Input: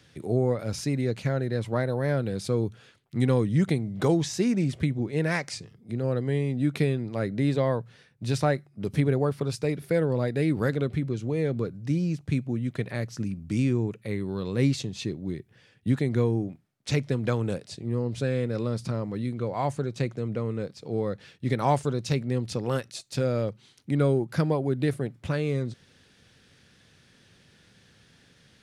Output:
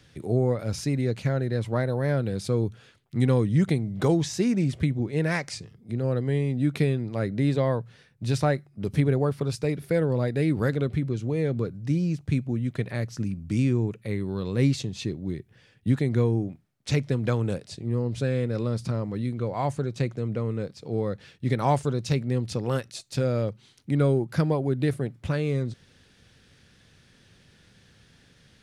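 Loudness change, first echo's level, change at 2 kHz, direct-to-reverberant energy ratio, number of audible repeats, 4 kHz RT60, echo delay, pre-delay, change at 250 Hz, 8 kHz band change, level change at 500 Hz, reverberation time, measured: +1.0 dB, none, 0.0 dB, none, none, none, none, none, +1.0 dB, 0.0 dB, 0.0 dB, none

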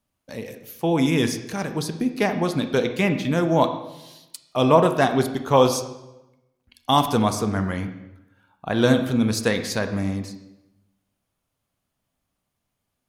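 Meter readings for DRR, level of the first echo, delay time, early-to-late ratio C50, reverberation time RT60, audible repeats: 7.5 dB, none, none, 9.5 dB, 0.95 s, none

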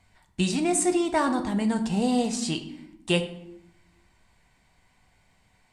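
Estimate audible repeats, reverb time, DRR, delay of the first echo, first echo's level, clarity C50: none, 0.80 s, 6.0 dB, none, none, 11.0 dB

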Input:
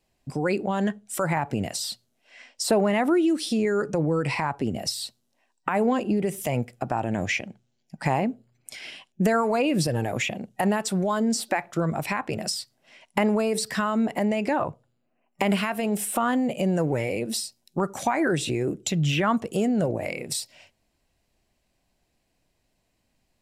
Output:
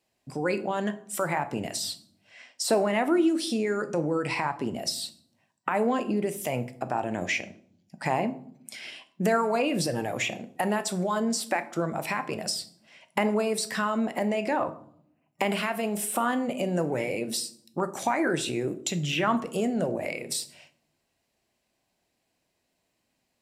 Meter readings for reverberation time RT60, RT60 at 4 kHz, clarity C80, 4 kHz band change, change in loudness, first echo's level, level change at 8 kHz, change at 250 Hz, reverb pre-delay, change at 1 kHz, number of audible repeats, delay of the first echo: 0.60 s, 0.45 s, 19.0 dB, -1.0 dB, -2.5 dB, none, -1.0 dB, -4.0 dB, 9 ms, -1.5 dB, none, none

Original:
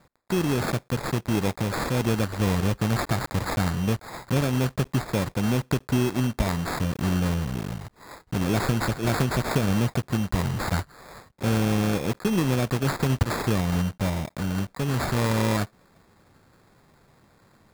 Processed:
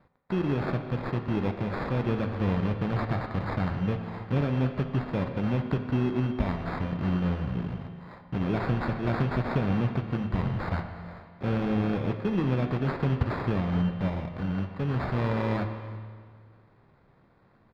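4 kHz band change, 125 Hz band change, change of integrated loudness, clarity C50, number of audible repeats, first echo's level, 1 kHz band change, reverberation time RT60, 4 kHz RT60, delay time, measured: -11.5 dB, -2.5 dB, -3.5 dB, 7.0 dB, 1, -21.0 dB, -4.0 dB, 1.9 s, 1.7 s, 0.331 s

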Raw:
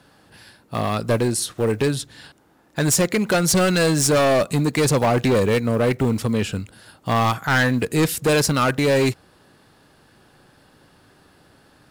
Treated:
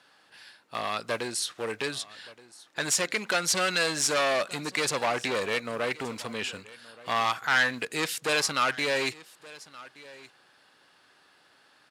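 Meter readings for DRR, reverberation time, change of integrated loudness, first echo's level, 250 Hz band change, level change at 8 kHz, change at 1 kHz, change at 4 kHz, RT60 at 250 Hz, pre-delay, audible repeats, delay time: none, none, -8.0 dB, -20.5 dB, -16.5 dB, -6.0 dB, -5.5 dB, -2.5 dB, none, none, 1, 1.173 s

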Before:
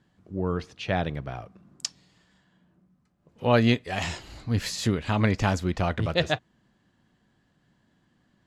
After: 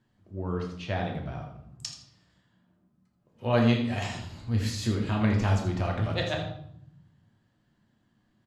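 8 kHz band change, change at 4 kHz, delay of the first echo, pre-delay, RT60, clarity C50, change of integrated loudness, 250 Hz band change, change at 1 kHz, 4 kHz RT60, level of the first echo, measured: -5.0 dB, -4.5 dB, 81 ms, 3 ms, 0.75 s, 5.5 dB, -2.0 dB, -1.0 dB, -4.0 dB, 0.55 s, -10.5 dB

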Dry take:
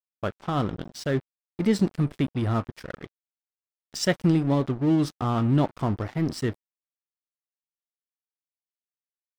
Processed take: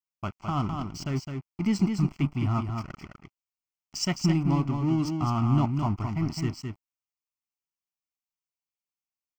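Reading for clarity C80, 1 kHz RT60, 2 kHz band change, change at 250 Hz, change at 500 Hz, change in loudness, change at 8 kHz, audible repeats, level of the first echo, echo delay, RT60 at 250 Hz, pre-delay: none, none, -5.0 dB, -2.0 dB, -9.0 dB, -2.0 dB, -0.5 dB, 1, -5.5 dB, 0.211 s, none, none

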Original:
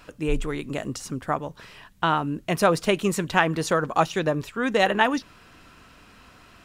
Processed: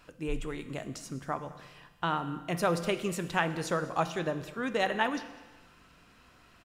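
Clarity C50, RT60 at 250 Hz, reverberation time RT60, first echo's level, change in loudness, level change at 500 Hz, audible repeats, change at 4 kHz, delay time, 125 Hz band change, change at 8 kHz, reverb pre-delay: 12.0 dB, 1.3 s, 1.3 s, -21.5 dB, -8.0 dB, -8.0 dB, 1, -8.0 dB, 0.202 s, -7.0 dB, -8.0 dB, 6 ms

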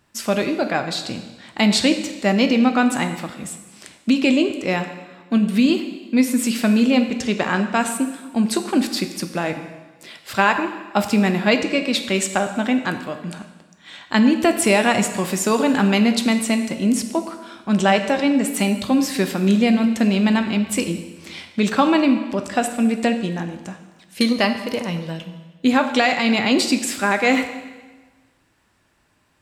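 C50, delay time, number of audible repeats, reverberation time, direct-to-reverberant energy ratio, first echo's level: 9.0 dB, none, none, 1.3 s, 7.0 dB, none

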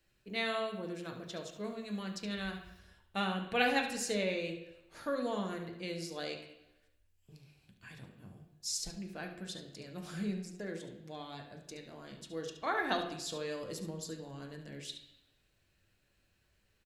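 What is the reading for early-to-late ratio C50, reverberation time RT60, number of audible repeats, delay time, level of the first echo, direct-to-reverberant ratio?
6.5 dB, 0.90 s, 1, 71 ms, -11.0 dB, 1.5 dB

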